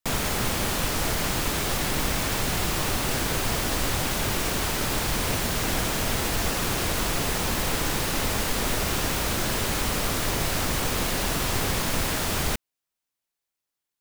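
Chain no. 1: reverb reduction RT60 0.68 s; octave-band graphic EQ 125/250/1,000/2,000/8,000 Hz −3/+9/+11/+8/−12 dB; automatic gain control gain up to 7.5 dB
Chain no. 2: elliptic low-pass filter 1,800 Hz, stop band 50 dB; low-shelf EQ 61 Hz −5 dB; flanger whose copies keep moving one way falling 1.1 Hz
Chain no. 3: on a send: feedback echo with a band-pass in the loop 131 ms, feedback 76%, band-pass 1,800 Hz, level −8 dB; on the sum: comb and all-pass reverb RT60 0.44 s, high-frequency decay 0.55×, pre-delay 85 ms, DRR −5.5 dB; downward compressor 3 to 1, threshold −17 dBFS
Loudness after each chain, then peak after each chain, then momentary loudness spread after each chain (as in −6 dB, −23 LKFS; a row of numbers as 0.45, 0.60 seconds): −16.0, −35.0, −22.0 LKFS; −3.0, −19.5, −8.0 dBFS; 1, 1, 1 LU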